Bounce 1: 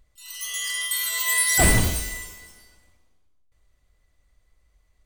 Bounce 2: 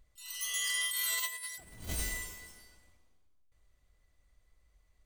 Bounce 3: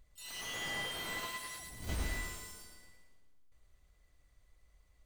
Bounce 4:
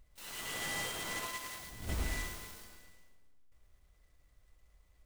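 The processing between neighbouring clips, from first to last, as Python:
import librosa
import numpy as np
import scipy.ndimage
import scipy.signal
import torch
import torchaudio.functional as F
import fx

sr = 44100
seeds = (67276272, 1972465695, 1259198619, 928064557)

y1 = fx.over_compress(x, sr, threshold_db=-27.0, ratio=-0.5)
y1 = F.gain(torch.from_numpy(y1), -9.0).numpy()
y2 = fx.echo_feedback(y1, sr, ms=112, feedback_pct=41, wet_db=-6.0)
y2 = fx.slew_limit(y2, sr, full_power_hz=31.0)
y2 = F.gain(torch.from_numpy(y2), 1.0).numpy()
y3 = fx.noise_mod_delay(y2, sr, seeds[0], noise_hz=5100.0, depth_ms=0.05)
y3 = F.gain(torch.from_numpy(y3), 1.0).numpy()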